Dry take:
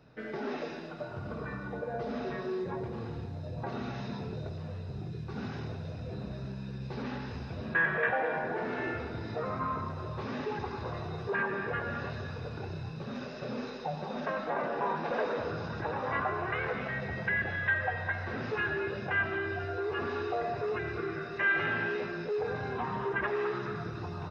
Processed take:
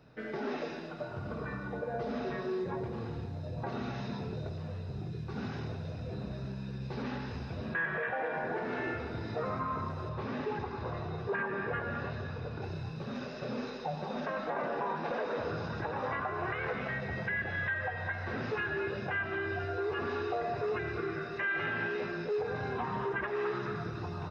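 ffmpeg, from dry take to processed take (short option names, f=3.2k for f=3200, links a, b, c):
-filter_complex "[0:a]asettb=1/sr,asplit=3[a][b][c];[a]atrim=end=10.094[d];[b]atrim=start=10.09:end=12.62,asetpts=PTS-STARTPTS,afade=t=in:d=0.004:c=qsin,afade=t=out:st=2.526:d=0.004:c=qsin,lowpass=f=3.4k:p=1[e];[c]atrim=start=12.616[f];[d][e]acrossfade=d=0.004:c1=hsin:c2=qsin[g];[g][f]acrossfade=d=0.004:c1=qsin:c2=hsin,alimiter=level_in=1dB:limit=-24dB:level=0:latency=1:release=186,volume=-1dB"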